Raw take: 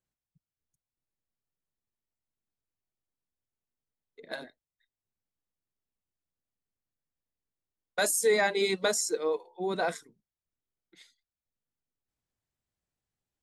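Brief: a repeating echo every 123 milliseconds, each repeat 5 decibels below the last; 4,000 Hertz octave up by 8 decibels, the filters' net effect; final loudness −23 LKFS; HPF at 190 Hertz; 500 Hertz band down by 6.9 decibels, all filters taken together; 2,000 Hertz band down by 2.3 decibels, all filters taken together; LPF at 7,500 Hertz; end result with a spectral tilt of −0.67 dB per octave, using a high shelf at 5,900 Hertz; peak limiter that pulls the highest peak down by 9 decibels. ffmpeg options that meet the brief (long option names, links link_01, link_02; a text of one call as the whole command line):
ffmpeg -i in.wav -af "highpass=190,lowpass=7500,equalizer=frequency=500:width_type=o:gain=-8.5,equalizer=frequency=2000:width_type=o:gain=-4.5,equalizer=frequency=4000:width_type=o:gain=9,highshelf=frequency=5900:gain=3,alimiter=limit=-22.5dB:level=0:latency=1,aecho=1:1:123|246|369|492|615|738|861:0.562|0.315|0.176|0.0988|0.0553|0.031|0.0173,volume=9dB" out.wav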